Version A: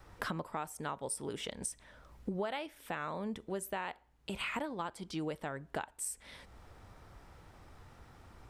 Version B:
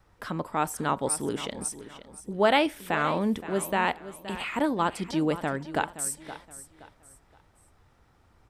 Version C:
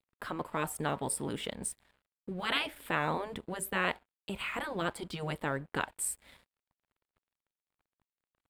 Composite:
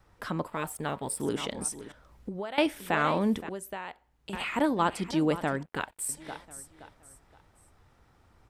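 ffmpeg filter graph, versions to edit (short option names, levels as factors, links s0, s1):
-filter_complex "[2:a]asplit=2[s0][s1];[0:a]asplit=2[s2][s3];[1:a]asplit=5[s4][s5][s6][s7][s8];[s4]atrim=end=0.482[s9];[s0]atrim=start=0.478:end=1.202[s10];[s5]atrim=start=1.198:end=1.922[s11];[s2]atrim=start=1.918:end=2.582[s12];[s6]atrim=start=2.578:end=3.492[s13];[s3]atrim=start=3.488:end=4.332[s14];[s7]atrim=start=4.328:end=5.632[s15];[s1]atrim=start=5.628:end=6.092[s16];[s8]atrim=start=6.088[s17];[s9][s10]acrossfade=d=0.004:c1=hsin:c2=hsin[s18];[s18][s11]acrossfade=d=0.004:c1=hsin:c2=hsin[s19];[s19][s12]acrossfade=d=0.004:c1=hsin:c2=hsin[s20];[s20][s13]acrossfade=d=0.004:c1=hsin:c2=hsin[s21];[s21][s14]acrossfade=d=0.004:c1=hsin:c2=hsin[s22];[s22][s15]acrossfade=d=0.004:c1=hsin:c2=hsin[s23];[s23][s16]acrossfade=d=0.004:c1=hsin:c2=hsin[s24];[s24][s17]acrossfade=d=0.004:c1=hsin:c2=hsin"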